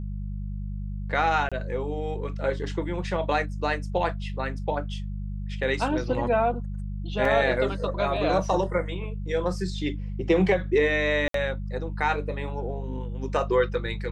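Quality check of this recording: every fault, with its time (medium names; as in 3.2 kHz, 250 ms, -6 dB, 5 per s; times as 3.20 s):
hum 50 Hz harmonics 4 -32 dBFS
1.49–1.52 s: dropout 26 ms
7.25 s: dropout 2.9 ms
11.28–11.34 s: dropout 63 ms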